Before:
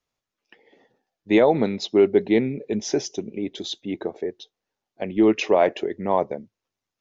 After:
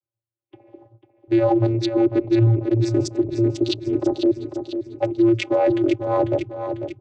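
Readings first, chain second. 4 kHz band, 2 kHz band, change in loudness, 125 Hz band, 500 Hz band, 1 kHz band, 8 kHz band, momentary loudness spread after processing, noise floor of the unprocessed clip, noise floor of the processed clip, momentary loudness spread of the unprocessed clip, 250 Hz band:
−0.5 dB, −4.0 dB, +1.5 dB, +13.5 dB, +0.5 dB, −1.0 dB, can't be measured, 10 LU, below −85 dBFS, below −85 dBFS, 13 LU, +4.0 dB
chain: adaptive Wiener filter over 25 samples
reversed playback
downward compressor 5 to 1, threshold −28 dBFS, peak gain reduction 14.5 dB
reversed playback
high-shelf EQ 4,900 Hz +8.5 dB
noise gate with hold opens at −54 dBFS
channel vocoder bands 16, square 114 Hz
harmonic and percussive parts rebalanced percussive +5 dB
on a send: repeating echo 496 ms, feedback 50%, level −9 dB
on the sum: boost into a limiter +24.5 dB
level −9 dB

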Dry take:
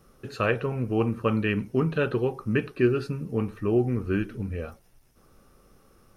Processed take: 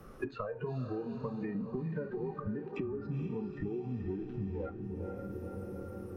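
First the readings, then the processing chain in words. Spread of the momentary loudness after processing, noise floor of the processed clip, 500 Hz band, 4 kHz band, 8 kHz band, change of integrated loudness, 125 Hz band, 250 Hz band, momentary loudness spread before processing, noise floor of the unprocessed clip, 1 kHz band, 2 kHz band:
5 LU, −48 dBFS, −11.5 dB, below −15 dB, can't be measured, −12.0 dB, −10.0 dB, −10.0 dB, 8 LU, −60 dBFS, −11.5 dB, −18.0 dB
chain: in parallel at −10 dB: fuzz pedal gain 36 dB, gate −43 dBFS
on the sum: downward compressor 12 to 1, threshold −29 dBFS, peak gain reduction 16 dB
treble cut that deepens with the level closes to 1,200 Hz, closed at −28 dBFS
noise reduction from a noise print of the clip's start 19 dB
flanger 0.36 Hz, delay 9.9 ms, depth 1.6 ms, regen −82%
on a send: feedback delay with all-pass diffusion 464 ms, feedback 44%, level −9 dB
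on the sum: multiband upward and downward compressor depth 100%

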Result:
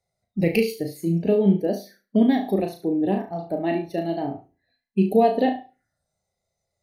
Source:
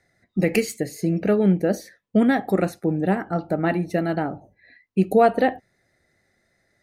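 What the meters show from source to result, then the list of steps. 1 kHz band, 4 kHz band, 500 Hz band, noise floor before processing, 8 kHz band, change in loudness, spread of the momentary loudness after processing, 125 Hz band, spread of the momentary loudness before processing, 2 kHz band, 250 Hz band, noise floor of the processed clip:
−2.5 dB, +0.5 dB, −1.0 dB, −71 dBFS, can't be measured, −0.5 dB, 11 LU, −2.0 dB, 10 LU, −6.0 dB, 0.0 dB, −82 dBFS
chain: phaser swept by the level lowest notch 290 Hz, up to 1,400 Hz, full sweep at −24 dBFS
flutter between parallel walls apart 6.1 metres, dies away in 0.39 s
noise reduction from a noise print of the clip's start 10 dB

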